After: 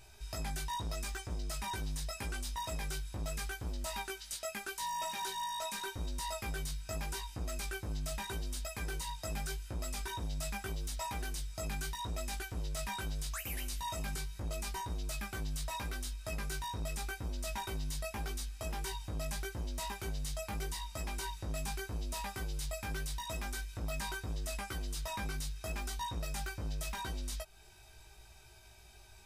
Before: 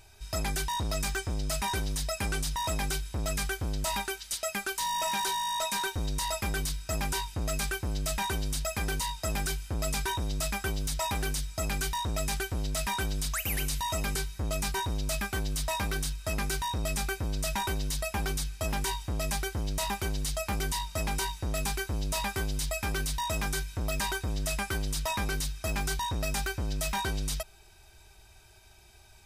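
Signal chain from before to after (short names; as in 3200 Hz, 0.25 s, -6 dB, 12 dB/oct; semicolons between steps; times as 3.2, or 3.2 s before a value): compressor 2:1, threshold -42 dBFS, peak gain reduction 8 dB; chorus 0.81 Hz, delay 16.5 ms, depth 2.5 ms; gain +1.5 dB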